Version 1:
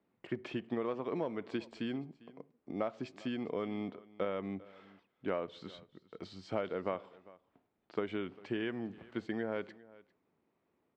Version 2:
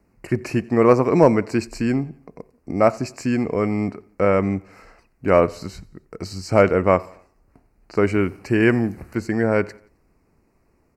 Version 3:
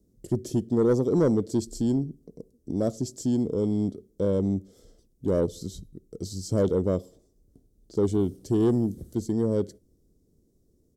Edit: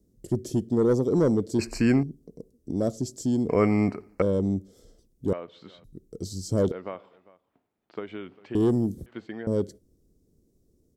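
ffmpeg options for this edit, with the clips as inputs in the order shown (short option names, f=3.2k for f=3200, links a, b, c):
-filter_complex "[1:a]asplit=2[a][b];[0:a]asplit=3[c][d][e];[2:a]asplit=6[f][g][h][i][j][k];[f]atrim=end=1.592[l];[a]atrim=start=1.588:end=2.032[m];[g]atrim=start=2.028:end=3.492[n];[b]atrim=start=3.488:end=4.222[o];[h]atrim=start=4.218:end=5.332[p];[c]atrim=start=5.328:end=5.842[q];[i]atrim=start=5.838:end=6.722[r];[d]atrim=start=6.718:end=8.552[s];[j]atrim=start=8.548:end=9.062[t];[e]atrim=start=9.058:end=9.472[u];[k]atrim=start=9.468[v];[l][m]acrossfade=d=0.004:c1=hsin:c2=hsin[w];[w][n]acrossfade=d=0.004:c1=hsin:c2=hsin[x];[x][o]acrossfade=d=0.004:c1=hsin:c2=hsin[y];[y][p]acrossfade=d=0.004:c1=hsin:c2=hsin[z];[z][q]acrossfade=d=0.004:c1=hsin:c2=hsin[aa];[aa][r]acrossfade=d=0.004:c1=hsin:c2=hsin[ab];[ab][s]acrossfade=d=0.004:c1=hsin:c2=hsin[ac];[ac][t]acrossfade=d=0.004:c1=hsin:c2=hsin[ad];[ad][u]acrossfade=d=0.004:c1=hsin:c2=hsin[ae];[ae][v]acrossfade=d=0.004:c1=hsin:c2=hsin"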